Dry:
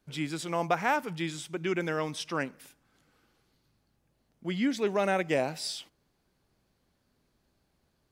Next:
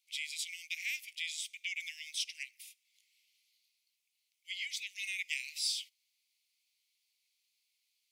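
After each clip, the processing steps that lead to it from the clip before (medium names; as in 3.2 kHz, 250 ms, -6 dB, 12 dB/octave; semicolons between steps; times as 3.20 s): steep high-pass 2.1 kHz 96 dB/octave; trim +2 dB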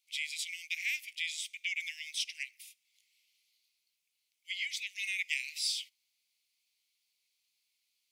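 dynamic bell 1.6 kHz, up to +5 dB, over -53 dBFS, Q 0.81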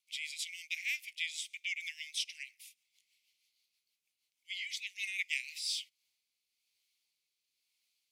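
rotary cabinet horn 6.3 Hz, later 1 Hz, at 5.33 s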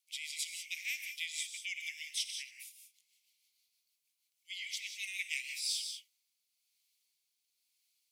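treble shelf 4.4 kHz +11.5 dB; gated-style reverb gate 210 ms rising, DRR 5.5 dB; trim -6 dB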